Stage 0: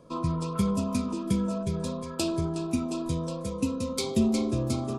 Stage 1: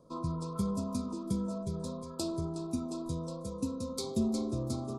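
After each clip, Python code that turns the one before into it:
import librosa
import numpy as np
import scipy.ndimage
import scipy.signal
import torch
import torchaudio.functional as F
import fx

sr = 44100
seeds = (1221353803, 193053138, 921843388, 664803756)

y = fx.band_shelf(x, sr, hz=2200.0, db=-14.0, octaves=1.2)
y = F.gain(torch.from_numpy(y), -6.5).numpy()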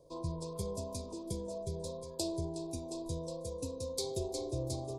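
y = fx.fixed_phaser(x, sr, hz=540.0, stages=4)
y = F.gain(torch.from_numpy(y), 2.0).numpy()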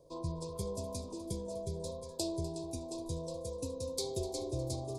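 y = x + 10.0 ** (-15.0 / 20.0) * np.pad(x, (int(249 * sr / 1000.0), 0))[:len(x)]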